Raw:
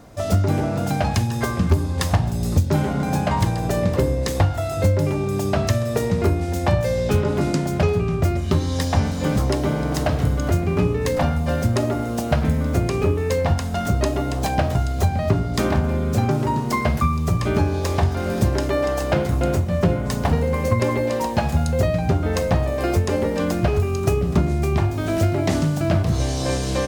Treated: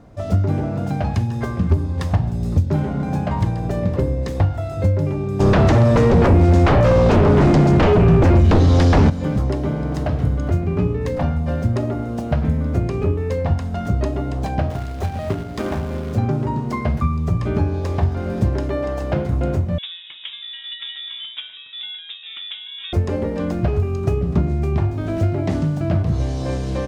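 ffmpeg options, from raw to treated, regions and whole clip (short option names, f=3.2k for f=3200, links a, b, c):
-filter_complex "[0:a]asettb=1/sr,asplit=3[a][b][c];[a]atrim=end=5.404[d];[b]atrim=start=5.4:end=9.1,asetpts=PTS-STARTPTS,afade=t=in:d=0.004:c=qsin,afade=t=out:st=3.696:d=0.004:c=qsin,aeval=exprs='0.376*sin(PI/2*3.16*val(0)/0.376)':c=same,acrossover=split=7700[e][f];[f]acompressor=threshold=-41dB:ratio=4:attack=1:release=60[g];[e][g]amix=inputs=2:normalize=0[h];[c]atrim=start=9.096[i];[d][h]acrossfade=d=0.004:c1=hsin:c2=qsin[j];[j][i]acrossfade=d=0.004:c1=qsin:c2=hsin,asettb=1/sr,asplit=3[k][l][m];[k]atrim=end=14.704[n];[l]atrim=start=14.7:end=16.16,asetpts=PTS-STARTPTS,afade=t=in:d=0.004:c=qsin,afade=t=out:st=1.456:d=0.004:c=qsin,bass=f=250:g=-6,treble=f=4k:g=-1,bandreject=f=60:t=h:w=6,bandreject=f=120:t=h:w=6,bandreject=f=180:t=h:w=6,bandreject=f=240:t=h:w=6,acrusher=bits=2:mode=log:mix=0:aa=0.000001[o];[m]atrim=start=16.156[p];[n][o]acrossfade=d=0.004:c1=hsin:c2=qsin[q];[q][p]acrossfade=d=0.004:c1=qsin:c2=hsin,asettb=1/sr,asplit=3[r][s][t];[r]atrim=end=19.784[u];[s]atrim=start=19.78:end=22.93,asetpts=PTS-STARTPTS,afade=t=in:d=0.004:c=qsin,afade=t=out:st=3.146:d=0.004:c=qsin,highpass=220,acrossover=split=290 2500:gain=0.112 1 0.0891[v][w][x];[v][w][x]amix=inputs=3:normalize=0,lowpass=f=3.4k:t=q:w=0.5098,lowpass=f=3.4k:t=q:w=0.6013,lowpass=f=3.4k:t=q:w=0.9,lowpass=f=3.4k:t=q:w=2.563,afreqshift=-4000[y];[t]atrim=start=22.926[z];[u][y]acrossfade=d=0.004:c1=hsin:c2=qsin[aa];[aa][z]acrossfade=d=0.004:c1=qsin:c2=hsin,lowpass=f=2.8k:p=1,lowshelf=f=390:g=6,volume=-4.5dB"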